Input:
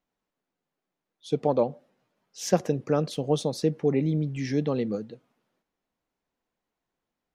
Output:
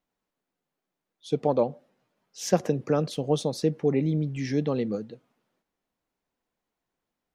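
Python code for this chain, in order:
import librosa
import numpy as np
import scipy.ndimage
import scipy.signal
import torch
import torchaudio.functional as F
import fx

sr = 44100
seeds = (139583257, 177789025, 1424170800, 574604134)

y = fx.band_squash(x, sr, depth_pct=40, at=(2.63, 3.07))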